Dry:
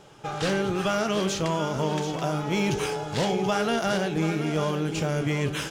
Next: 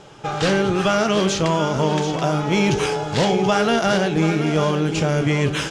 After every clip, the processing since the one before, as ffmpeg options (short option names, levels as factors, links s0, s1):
-af "lowpass=8300,volume=2.24"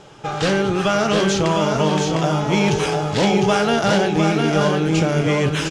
-af "aecho=1:1:705:0.596"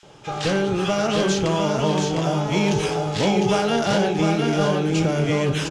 -filter_complex "[0:a]acrossover=split=1500[s0][s1];[s0]adelay=30[s2];[s2][s1]amix=inputs=2:normalize=0,volume=0.75"